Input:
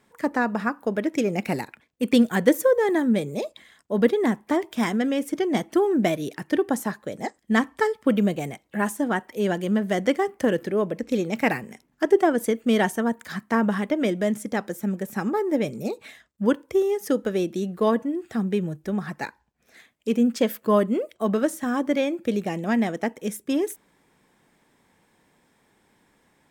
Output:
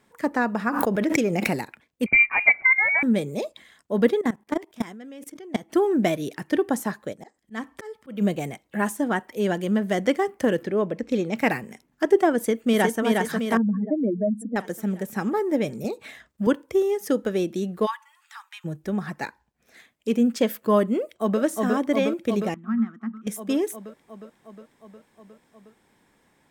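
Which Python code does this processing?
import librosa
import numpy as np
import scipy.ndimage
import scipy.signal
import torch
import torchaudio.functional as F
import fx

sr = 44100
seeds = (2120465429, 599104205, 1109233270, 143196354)

y = fx.pre_swell(x, sr, db_per_s=32.0, at=(0.7, 1.49), fade=0.02)
y = fx.freq_invert(y, sr, carrier_hz=2600, at=(2.06, 3.03))
y = fx.level_steps(y, sr, step_db=20, at=(4.21, 5.7))
y = fx.auto_swell(y, sr, attack_ms=329.0, at=(7.12, 8.2), fade=0.02)
y = fx.peak_eq(y, sr, hz=13000.0, db=-9.5, octaves=1.2, at=(10.62, 11.38))
y = fx.echo_throw(y, sr, start_s=12.37, length_s=0.65, ms=360, feedback_pct=55, wet_db=-2.5)
y = fx.spec_expand(y, sr, power=2.9, at=(13.57, 14.56))
y = fx.band_squash(y, sr, depth_pct=70, at=(15.84, 16.47))
y = fx.cheby_ripple_highpass(y, sr, hz=860.0, ripple_db=3, at=(17.85, 18.64), fade=0.02)
y = fx.echo_throw(y, sr, start_s=21.0, length_s=0.41, ms=360, feedback_pct=75, wet_db=-2.0)
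y = fx.double_bandpass(y, sr, hz=540.0, octaves=2.5, at=(22.54, 23.27))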